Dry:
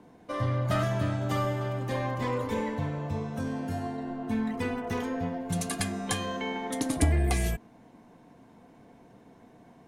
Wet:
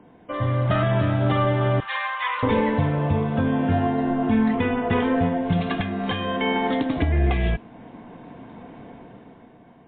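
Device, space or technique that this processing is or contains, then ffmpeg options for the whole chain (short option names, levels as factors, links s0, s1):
low-bitrate web radio: -filter_complex "[0:a]asettb=1/sr,asplit=3[s0][s1][s2];[s0]atrim=end=1.804[s3];[s1]atrim=start=1.8:end=2.43,asetpts=PTS-STARTPTS,afade=t=in:d=0.004:c=qsin,afade=t=out:st=0.626:d=0.004:c=qsin,highpass=f=1100:w=0.5412,highpass=f=1100:w=1.3066[s4];[s2]atrim=start=2.426[s5];[s3][s4]acrossfade=d=0.004:c1=hsin:c2=qsin[s6];[s6][s5]acrossfade=d=0.004:c1=qsin:c2=hsin,dynaudnorm=f=130:g=13:m=3.16,alimiter=limit=0.188:level=0:latency=1:release=495,volume=1.58" -ar 8000 -c:a libmp3lame -b:a 24k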